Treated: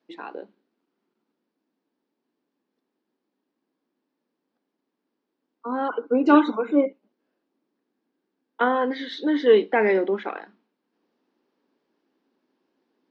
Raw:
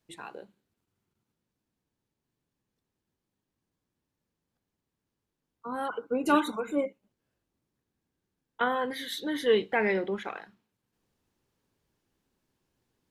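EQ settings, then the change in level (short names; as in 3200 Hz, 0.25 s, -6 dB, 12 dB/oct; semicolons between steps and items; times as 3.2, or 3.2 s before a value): elliptic band-pass 260–5100 Hz, stop band 40 dB; tilt -2.5 dB/oct; +6.0 dB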